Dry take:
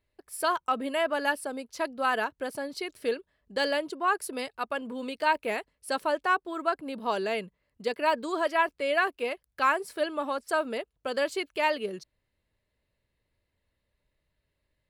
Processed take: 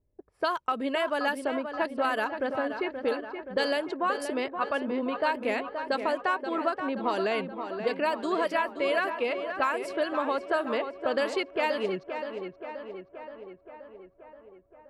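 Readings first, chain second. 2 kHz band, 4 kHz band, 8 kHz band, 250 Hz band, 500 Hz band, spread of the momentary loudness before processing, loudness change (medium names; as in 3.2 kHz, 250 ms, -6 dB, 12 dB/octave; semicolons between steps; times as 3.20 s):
-1.0 dB, -1.0 dB, no reading, +3.5 dB, +2.0 dB, 9 LU, 0.0 dB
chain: level-controlled noise filter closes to 470 Hz, open at -23 dBFS; compression, threshold -30 dBFS, peak gain reduction 11 dB; on a send: tape echo 526 ms, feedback 69%, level -7 dB, low-pass 2.7 kHz; on the sum: trim +5.5 dB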